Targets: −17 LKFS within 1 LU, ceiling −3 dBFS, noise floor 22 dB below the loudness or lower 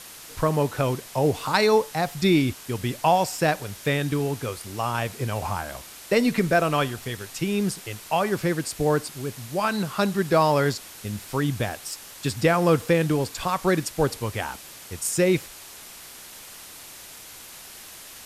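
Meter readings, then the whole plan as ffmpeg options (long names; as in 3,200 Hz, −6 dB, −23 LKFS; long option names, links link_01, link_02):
background noise floor −43 dBFS; target noise floor −47 dBFS; integrated loudness −24.5 LKFS; sample peak −7.5 dBFS; target loudness −17.0 LKFS
→ -af "afftdn=noise_reduction=6:noise_floor=-43"
-af "volume=7.5dB,alimiter=limit=-3dB:level=0:latency=1"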